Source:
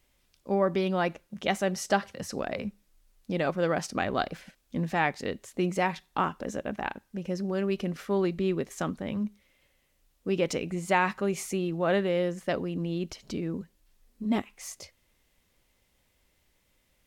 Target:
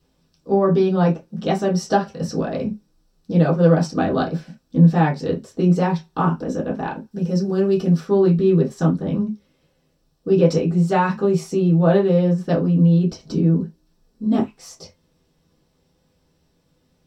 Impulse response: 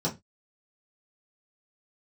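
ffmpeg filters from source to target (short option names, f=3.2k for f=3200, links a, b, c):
-filter_complex "[0:a]asettb=1/sr,asplit=3[a][b][c];[a]atrim=end=7.114[d];[b]atrim=start=7.11:end=8,asetpts=PTS-STARTPTS,afade=t=in:d=0.004:c=qsin,afade=t=out:st=0.886:d=0.004:c=qsin,highshelf=f=5k:g=8.5[e];[c]atrim=start=7.996[f];[d][e]acrossfade=d=0.004:c1=hsin:c2=qsin[g];[g][f]acrossfade=d=0.004:c1=qsin:c2=hsin[h];[1:a]atrim=start_sample=2205,atrim=end_sample=3969[i];[h][i]afir=irnorm=-1:irlink=0,volume=-3.5dB"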